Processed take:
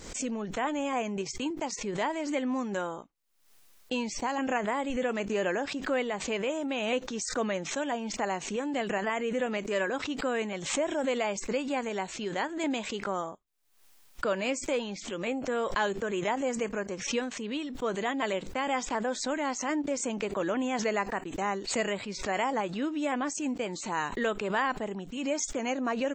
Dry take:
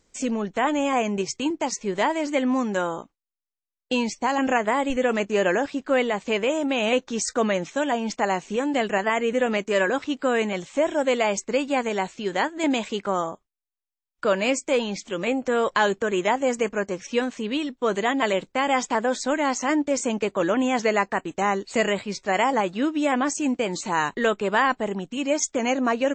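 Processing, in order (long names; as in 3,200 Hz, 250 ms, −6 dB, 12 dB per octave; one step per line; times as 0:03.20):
background raised ahead of every attack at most 72 dB per second
level −8 dB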